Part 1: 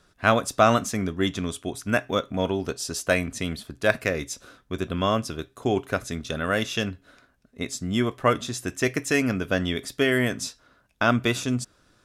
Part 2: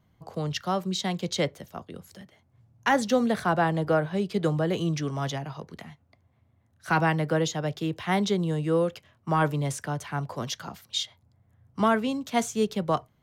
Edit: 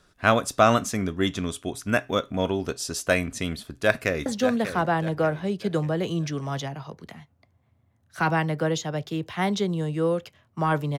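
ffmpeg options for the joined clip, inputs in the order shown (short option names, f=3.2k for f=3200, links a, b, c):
-filter_complex "[0:a]apad=whole_dur=10.98,atrim=end=10.98,atrim=end=4.262[a];[1:a]atrim=start=2.958:end=9.68[b];[a][b]acrossfade=d=0.004:c1=hsin:c2=hsin,asplit=2[c][d];[d]afade=t=in:st=3.64:d=0.01,afade=t=out:st=4.26:d=0.01,aecho=0:1:590|1180|1770|2360:0.334965|0.133986|0.0535945|0.0214378[e];[c][e]amix=inputs=2:normalize=0"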